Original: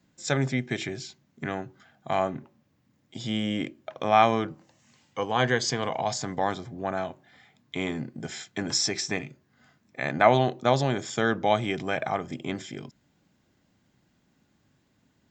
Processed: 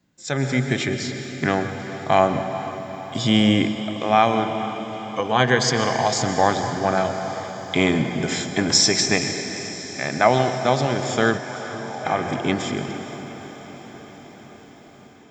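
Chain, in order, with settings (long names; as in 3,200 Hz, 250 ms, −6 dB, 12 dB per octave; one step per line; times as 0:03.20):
dense smooth reverb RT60 1.9 s, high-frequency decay 0.8×, pre-delay 110 ms, DRR 8.5 dB
automatic gain control gain up to 14 dB
0:11.37–0:12.04: resonant band-pass 1,900 Hz → 740 Hz, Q 9.9
feedback delay with all-pass diffusion 468 ms, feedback 68%, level −13 dB
every ending faded ahead of time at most 170 dB per second
level −1 dB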